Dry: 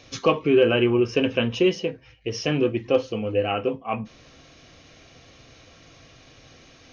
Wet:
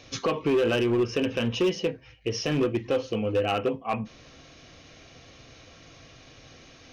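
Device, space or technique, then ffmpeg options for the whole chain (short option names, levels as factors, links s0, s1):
limiter into clipper: -af "alimiter=limit=0.211:level=0:latency=1:release=104,asoftclip=type=hard:threshold=0.119"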